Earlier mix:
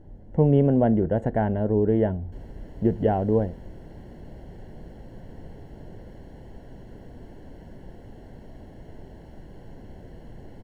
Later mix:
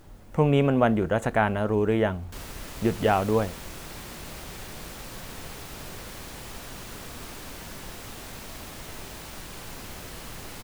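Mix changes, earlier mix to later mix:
speech -3.5 dB; master: remove running mean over 36 samples

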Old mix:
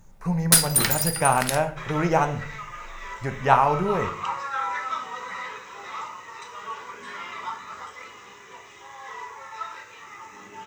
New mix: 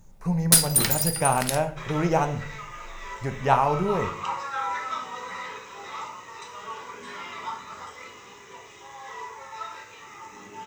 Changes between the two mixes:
second sound: send +7.5 dB; master: add bell 1500 Hz -5 dB 1.6 oct

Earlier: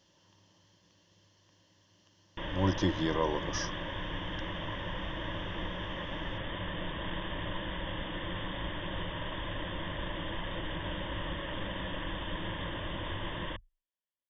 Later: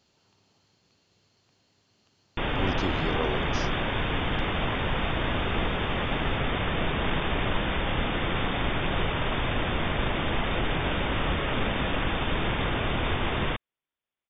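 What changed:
background +11.5 dB; master: remove ripple EQ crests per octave 1.2, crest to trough 11 dB

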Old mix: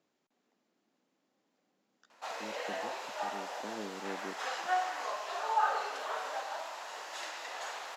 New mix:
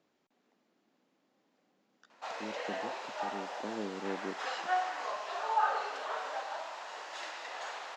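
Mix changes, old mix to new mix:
speech +4.0 dB; master: add Bessel low-pass 5400 Hz, order 2

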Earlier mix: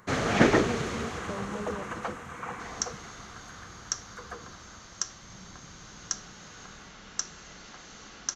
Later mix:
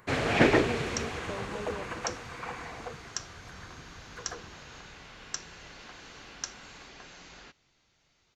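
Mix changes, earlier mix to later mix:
second sound: entry -1.85 s; master: add thirty-one-band EQ 200 Hz -8 dB, 1250 Hz -5 dB, 2500 Hz +5 dB, 6300 Hz -8 dB

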